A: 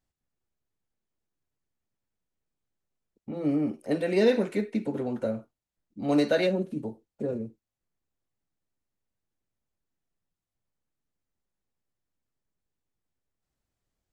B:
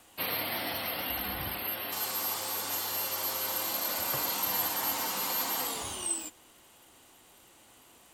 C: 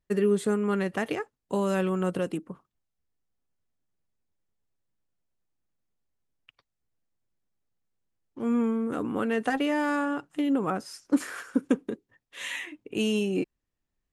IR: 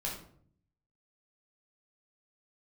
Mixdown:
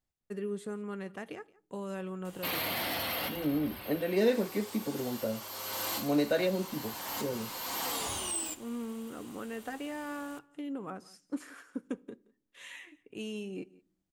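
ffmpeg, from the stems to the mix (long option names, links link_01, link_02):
-filter_complex "[0:a]volume=-4.5dB,asplit=2[link_01][link_02];[1:a]acrossover=split=7200[link_03][link_04];[link_04]acompressor=threshold=-37dB:ratio=4:attack=1:release=60[link_05];[link_03][link_05]amix=inputs=2:normalize=0,aeval=exprs='0.0841*(cos(1*acos(clip(val(0)/0.0841,-1,1)))-cos(1*PI/2))+0.0211*(cos(5*acos(clip(val(0)/0.0841,-1,1)))-cos(5*PI/2))':channel_layout=same,adelay=2250,volume=-4.5dB,asplit=2[link_06][link_07];[link_07]volume=-18.5dB[link_08];[2:a]agate=range=-13dB:threshold=-53dB:ratio=16:detection=peak,adelay=200,volume=-13dB,asplit=3[link_09][link_10][link_11];[link_10]volume=-23dB[link_12];[link_11]volume=-22dB[link_13];[link_02]apad=whole_len=458140[link_14];[link_06][link_14]sidechaincompress=threshold=-47dB:ratio=4:attack=21:release=449[link_15];[3:a]atrim=start_sample=2205[link_16];[link_08][link_12]amix=inputs=2:normalize=0[link_17];[link_17][link_16]afir=irnorm=-1:irlink=0[link_18];[link_13]aecho=0:1:173:1[link_19];[link_01][link_15][link_09][link_18][link_19]amix=inputs=5:normalize=0"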